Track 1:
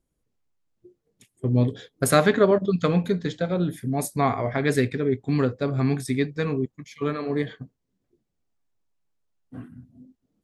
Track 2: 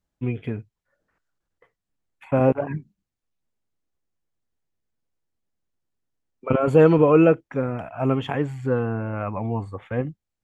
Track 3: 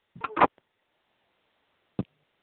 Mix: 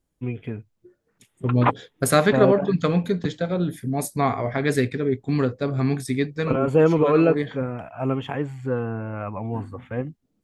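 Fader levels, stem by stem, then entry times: +0.5, -2.5, -0.5 dB; 0.00, 0.00, 1.25 s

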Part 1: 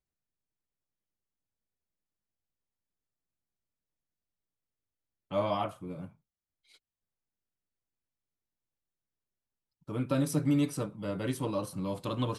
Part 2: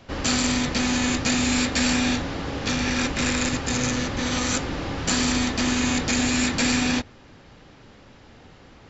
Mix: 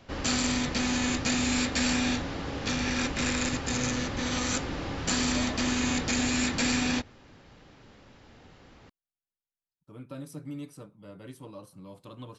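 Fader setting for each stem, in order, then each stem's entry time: -12.0, -5.0 dB; 0.00, 0.00 s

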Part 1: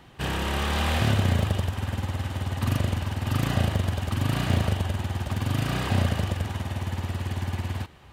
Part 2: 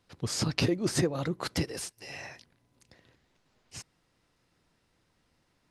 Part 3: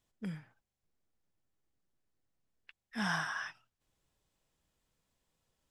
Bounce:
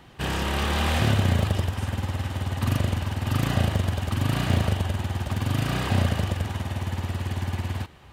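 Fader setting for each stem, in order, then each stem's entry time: +1.0 dB, -12.0 dB, off; 0.00 s, 0.00 s, off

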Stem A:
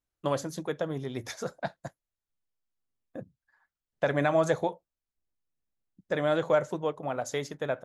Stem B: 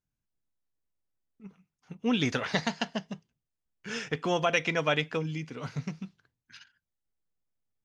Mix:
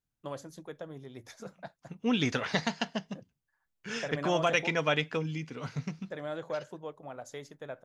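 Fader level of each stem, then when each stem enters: -11.0, -1.0 dB; 0.00, 0.00 s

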